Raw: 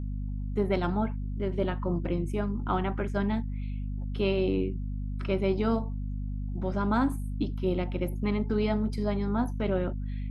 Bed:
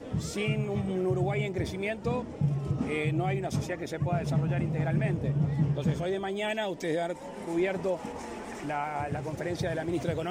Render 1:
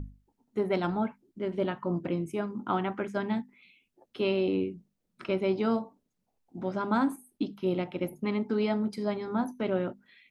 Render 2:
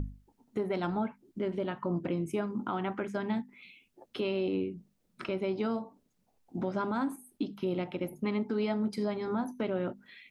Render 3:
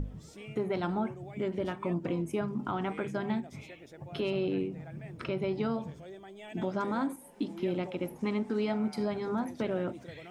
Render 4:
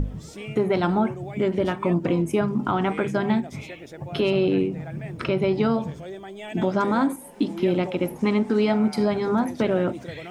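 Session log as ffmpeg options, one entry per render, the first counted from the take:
-af "bandreject=f=50:t=h:w=6,bandreject=f=100:t=h:w=6,bandreject=f=150:t=h:w=6,bandreject=f=200:t=h:w=6,bandreject=f=250:t=h:w=6"
-filter_complex "[0:a]asplit=2[s0][s1];[s1]acompressor=threshold=0.0126:ratio=6,volume=0.891[s2];[s0][s2]amix=inputs=2:normalize=0,alimiter=limit=0.0708:level=0:latency=1:release=258"
-filter_complex "[1:a]volume=0.158[s0];[0:a][s0]amix=inputs=2:normalize=0"
-af "volume=3.16"

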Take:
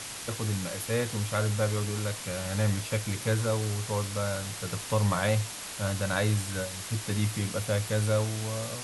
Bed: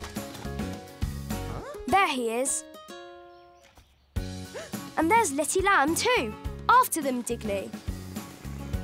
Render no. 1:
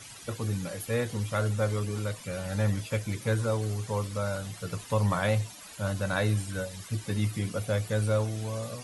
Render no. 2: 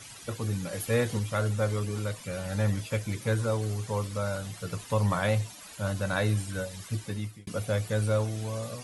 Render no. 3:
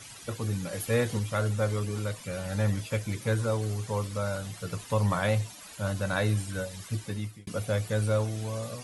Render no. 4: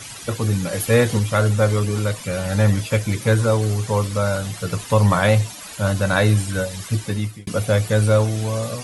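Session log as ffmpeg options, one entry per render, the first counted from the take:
-af "afftdn=nr=14:nf=-40"
-filter_complex "[0:a]asplit=4[s0][s1][s2][s3];[s0]atrim=end=0.732[s4];[s1]atrim=start=0.728:end=1.192,asetpts=PTS-STARTPTS,volume=1.41[s5];[s2]atrim=start=1.188:end=7.47,asetpts=PTS-STARTPTS,afade=t=out:st=5.762:d=0.52[s6];[s3]atrim=start=7.47,asetpts=PTS-STARTPTS,afade=t=in:d=0.004:c=hsin[s7];[s4][s5]acrossfade=d=0.004:c1=hsin:c2=hsin[s8];[s6][s7]concat=n=2:v=0:a=1[s9];[s8][s9]acrossfade=d=0.004:c1=hsin:c2=hsin"
-af anull
-af "volume=3.35"

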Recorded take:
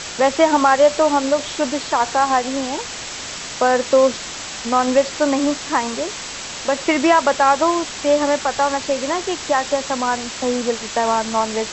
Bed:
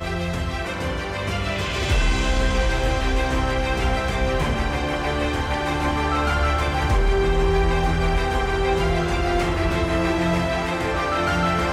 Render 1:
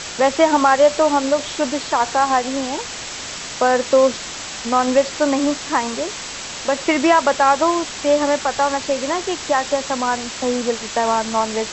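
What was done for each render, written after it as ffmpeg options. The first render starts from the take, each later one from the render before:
-af anull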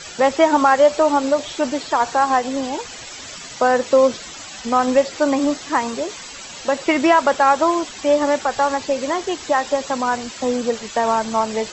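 -af "afftdn=nr=12:nf=-31"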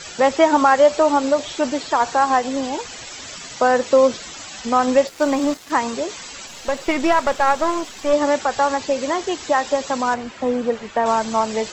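-filter_complex "[0:a]asettb=1/sr,asplit=3[s0][s1][s2];[s0]atrim=end=5.074[s3];[s1]atrim=start=5.07:end=5.72,asetpts=PTS-STARTPTS,afade=t=in:d=0.004:c=qsin,afade=t=out:st=0.646:d=0.004:c=qsin,aeval=exprs='sgn(val(0))*max(abs(val(0))-0.0178,0)':c=same[s4];[s2]atrim=start=5.716[s5];[s3][s4]acrossfade=d=0.004:c1=hsin:c2=qsin[s6];[s6][s5]acrossfade=d=0.004:c1=qsin:c2=hsin,asplit=3[s7][s8][s9];[s7]afade=t=out:st=6.46:d=0.02[s10];[s8]aeval=exprs='if(lt(val(0),0),0.447*val(0),val(0))':c=same,afade=t=in:st=6.46:d=0.02,afade=t=out:st=8.12:d=0.02[s11];[s9]afade=t=in:st=8.12:d=0.02[s12];[s10][s11][s12]amix=inputs=3:normalize=0,asettb=1/sr,asplit=3[s13][s14][s15];[s13]atrim=end=10.144[s16];[s14]atrim=start=10.14:end=11.06,asetpts=PTS-STARTPTS,afade=t=in:d=0.004:c=qsin,afade=t=out:st=0.916:d=0.004:c=qsin,acrossover=split=2800[s17][s18];[s18]acompressor=threshold=0.00355:ratio=4:attack=1:release=60[s19];[s17][s19]amix=inputs=2:normalize=0[s20];[s15]atrim=start=11.056[s21];[s16][s20]acrossfade=d=0.004:c1=hsin:c2=qsin[s22];[s22][s21]acrossfade=d=0.004:c1=qsin:c2=hsin"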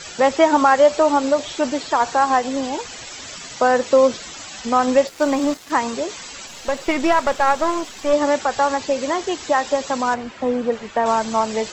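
-filter_complex "[0:a]asettb=1/sr,asplit=3[s0][s1][s2];[s0]atrim=end=10.154[s3];[s1]atrim=start=10.15:end=10.72,asetpts=PTS-STARTPTS,afade=t=in:d=0.004:c=qsin,afade=t=out:st=0.566:d=0.004:c=qsin,highshelf=f=6700:g=-6.5[s4];[s2]atrim=start=10.716[s5];[s3][s4]acrossfade=d=0.004:c1=hsin:c2=qsin[s6];[s6][s5]acrossfade=d=0.004:c1=qsin:c2=hsin"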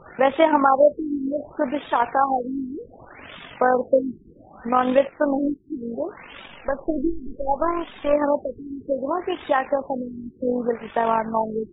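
-af "tremolo=f=47:d=0.519,afftfilt=real='re*lt(b*sr/1024,390*pow(3800/390,0.5+0.5*sin(2*PI*0.66*pts/sr)))':imag='im*lt(b*sr/1024,390*pow(3800/390,0.5+0.5*sin(2*PI*0.66*pts/sr)))':win_size=1024:overlap=0.75"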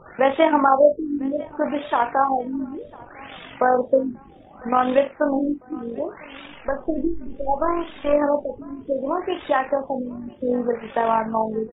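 -filter_complex "[0:a]asplit=2[s0][s1];[s1]adelay=41,volume=0.299[s2];[s0][s2]amix=inputs=2:normalize=0,aecho=1:1:1000|2000|3000:0.0631|0.0265|0.0111"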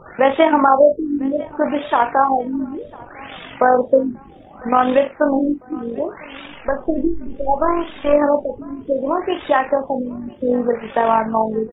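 -af "volume=1.68,alimiter=limit=0.794:level=0:latency=1"

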